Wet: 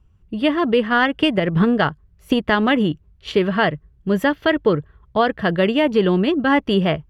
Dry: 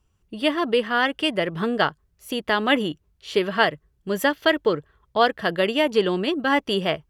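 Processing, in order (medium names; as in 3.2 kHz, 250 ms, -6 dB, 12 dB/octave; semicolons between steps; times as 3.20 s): tone controls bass +10 dB, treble -11 dB; 0.89–3.32 s: transient shaper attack +12 dB, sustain 0 dB; peak limiter -9 dBFS, peak gain reduction 11.5 dB; trim +3 dB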